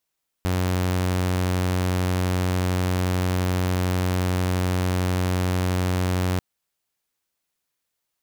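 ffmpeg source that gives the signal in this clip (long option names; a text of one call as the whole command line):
ffmpeg -f lavfi -i "aevalsrc='0.126*(2*mod(91.3*t,1)-1)':duration=5.94:sample_rate=44100" out.wav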